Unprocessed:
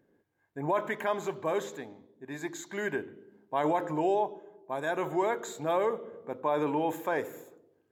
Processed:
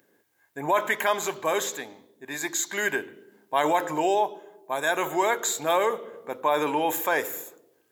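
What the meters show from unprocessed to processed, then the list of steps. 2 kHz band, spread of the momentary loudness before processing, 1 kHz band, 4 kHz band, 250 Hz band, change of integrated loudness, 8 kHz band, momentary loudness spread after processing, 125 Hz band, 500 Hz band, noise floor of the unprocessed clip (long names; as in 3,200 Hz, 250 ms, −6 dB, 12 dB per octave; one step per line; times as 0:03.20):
+10.0 dB, 15 LU, +6.5 dB, +13.5 dB, +1.0 dB, +5.5 dB, +17.0 dB, 13 LU, −2.5 dB, +3.5 dB, −72 dBFS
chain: spectral tilt +3.5 dB per octave
level +7 dB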